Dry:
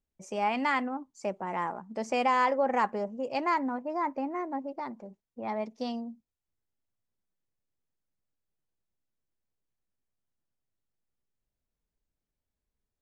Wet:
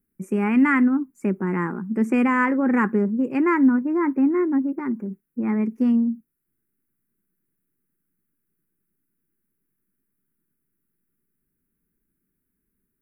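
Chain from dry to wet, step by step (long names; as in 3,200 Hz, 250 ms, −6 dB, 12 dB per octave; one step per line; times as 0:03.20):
drawn EQ curve 100 Hz 0 dB, 180 Hz +14 dB, 380 Hz +11 dB, 650 Hz −15 dB, 1,500 Hz +7 dB, 2,500 Hz −1 dB, 3,900 Hz −26 dB, 6,400 Hz −12 dB, 11,000 Hz +13 dB
level +4.5 dB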